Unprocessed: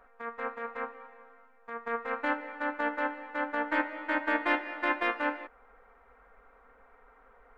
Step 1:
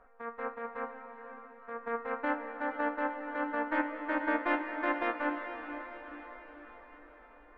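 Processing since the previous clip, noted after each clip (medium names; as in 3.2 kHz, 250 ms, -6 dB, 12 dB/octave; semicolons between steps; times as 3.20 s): low-pass 1.3 kHz 6 dB/octave; echo that smears into a reverb 497 ms, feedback 55%, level -9 dB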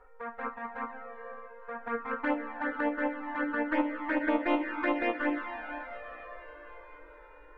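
touch-sensitive flanger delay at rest 2.3 ms, full sweep at -26.5 dBFS; on a send at -16 dB: reverberation RT60 0.70 s, pre-delay 4 ms; on the sum: trim +5.5 dB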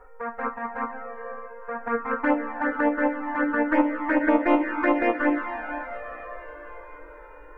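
peaking EQ 3.6 kHz -12 dB 0.89 oct; trim +8 dB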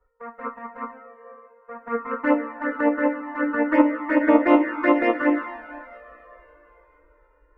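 comb of notches 800 Hz; three bands expanded up and down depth 70%; trim +2 dB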